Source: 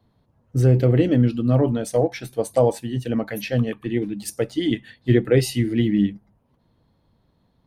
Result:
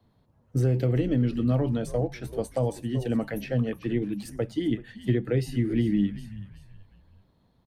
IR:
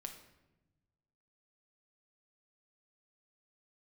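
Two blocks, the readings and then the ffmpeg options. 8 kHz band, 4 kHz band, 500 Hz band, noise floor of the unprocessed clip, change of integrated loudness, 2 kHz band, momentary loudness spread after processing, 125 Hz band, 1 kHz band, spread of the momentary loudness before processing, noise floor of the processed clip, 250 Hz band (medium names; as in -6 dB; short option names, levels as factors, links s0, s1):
-12.0 dB, -10.0 dB, -8.0 dB, -66 dBFS, -6.0 dB, -7.5 dB, 8 LU, -5.5 dB, -8.5 dB, 9 LU, -66 dBFS, -5.0 dB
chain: -filter_complex "[0:a]asplit=4[s0][s1][s2][s3];[s1]adelay=379,afreqshift=-97,volume=0.112[s4];[s2]adelay=758,afreqshift=-194,volume=0.0403[s5];[s3]adelay=1137,afreqshift=-291,volume=0.0146[s6];[s0][s4][s5][s6]amix=inputs=4:normalize=0,acrossover=split=230|1800[s7][s8][s9];[s7]acompressor=threshold=0.0794:ratio=4[s10];[s8]acompressor=threshold=0.0501:ratio=4[s11];[s9]acompressor=threshold=0.00562:ratio=4[s12];[s10][s11][s12]amix=inputs=3:normalize=0,volume=0.841"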